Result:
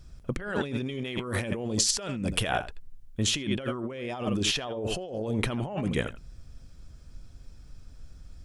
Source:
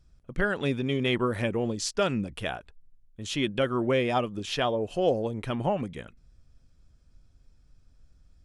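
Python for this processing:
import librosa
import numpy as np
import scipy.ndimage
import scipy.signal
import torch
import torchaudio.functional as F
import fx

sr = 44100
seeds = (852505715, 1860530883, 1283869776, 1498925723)

y = x + 10.0 ** (-15.0 / 20.0) * np.pad(x, (int(82 * sr / 1000.0), 0))[:len(x)]
y = fx.over_compress(y, sr, threshold_db=-36.0, ratio=-1.0)
y = fx.high_shelf(y, sr, hz=4900.0, db=fx.steps((0.0, 2.0), (0.77, 7.0), (2.47, 2.0)))
y = F.gain(torch.from_numpy(y), 4.5).numpy()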